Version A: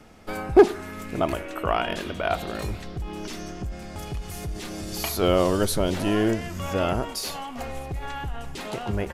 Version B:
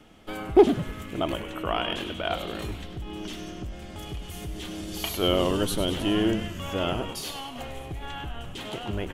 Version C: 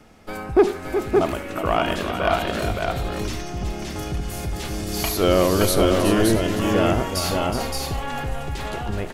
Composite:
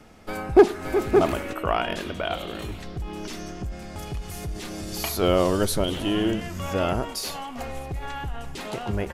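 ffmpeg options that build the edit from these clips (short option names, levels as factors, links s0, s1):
-filter_complex "[1:a]asplit=2[s0][s1];[0:a]asplit=4[s2][s3][s4][s5];[s2]atrim=end=0.812[s6];[2:a]atrim=start=0.808:end=1.532[s7];[s3]atrim=start=1.528:end=2.252[s8];[s0]atrim=start=2.248:end=2.782[s9];[s4]atrim=start=2.778:end=5.842[s10];[s1]atrim=start=5.838:end=6.412[s11];[s5]atrim=start=6.408[s12];[s6][s7]acrossfade=d=0.004:c1=hsin:c2=hsin[s13];[s13][s8]acrossfade=d=0.004:c1=hsin:c2=hsin[s14];[s14][s9]acrossfade=d=0.004:c1=hsin:c2=hsin[s15];[s15][s10]acrossfade=d=0.004:c1=hsin:c2=hsin[s16];[s16][s11]acrossfade=d=0.004:c1=hsin:c2=hsin[s17];[s17][s12]acrossfade=d=0.004:c1=hsin:c2=hsin"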